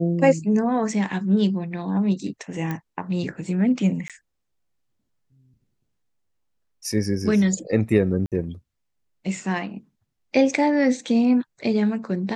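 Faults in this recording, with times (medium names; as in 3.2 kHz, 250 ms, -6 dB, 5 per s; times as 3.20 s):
2.71 s: pop -16 dBFS
4.08–4.10 s: dropout 17 ms
8.26–8.32 s: dropout 57 ms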